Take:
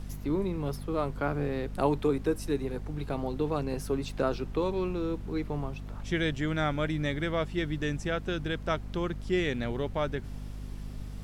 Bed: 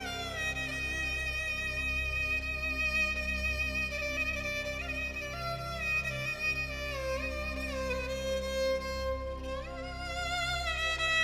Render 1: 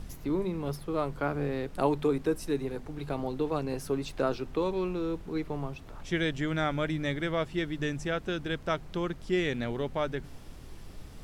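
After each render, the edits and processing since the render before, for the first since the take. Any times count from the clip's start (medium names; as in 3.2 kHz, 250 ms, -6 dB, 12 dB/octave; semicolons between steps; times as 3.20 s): de-hum 50 Hz, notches 5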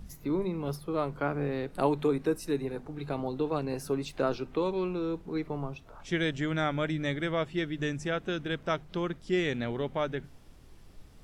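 noise print and reduce 8 dB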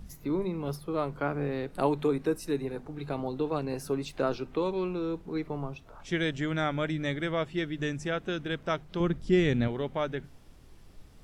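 9.00–9.68 s: bass shelf 270 Hz +11.5 dB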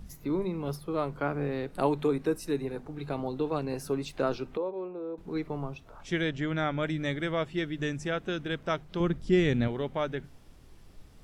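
4.57–5.18 s: band-pass filter 580 Hz, Q 1.7; 6.21–6.83 s: distance through air 82 m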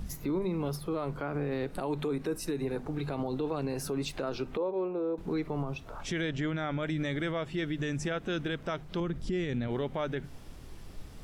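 in parallel at +2 dB: compression, threshold -38 dBFS, peak gain reduction 17.5 dB; on the sum: peak limiter -24 dBFS, peak gain reduction 12 dB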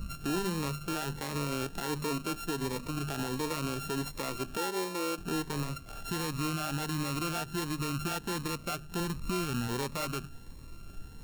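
sorted samples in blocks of 32 samples; Shepard-style phaser rising 1.4 Hz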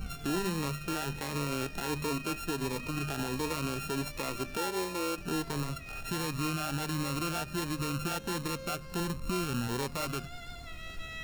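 add bed -14.5 dB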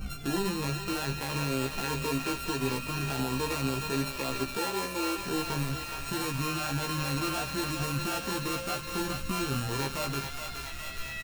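doubling 15 ms -3 dB; thinning echo 418 ms, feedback 80%, high-pass 930 Hz, level -5 dB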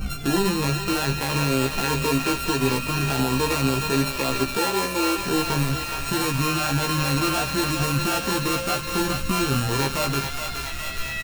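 trim +8.5 dB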